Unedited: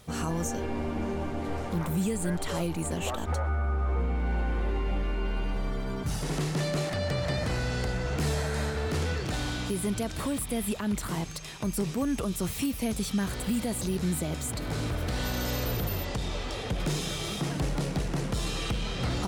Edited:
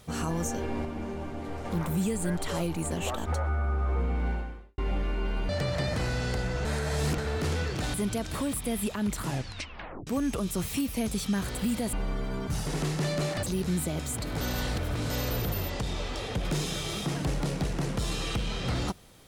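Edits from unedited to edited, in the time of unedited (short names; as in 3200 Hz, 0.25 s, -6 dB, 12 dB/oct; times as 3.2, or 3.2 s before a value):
0.85–1.65 gain -4 dB
4.28–4.78 fade out quadratic
5.49–6.99 move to 13.78
8.15–8.68 reverse
9.44–9.79 cut
11.06 tape stop 0.86 s
14.76–15.45 reverse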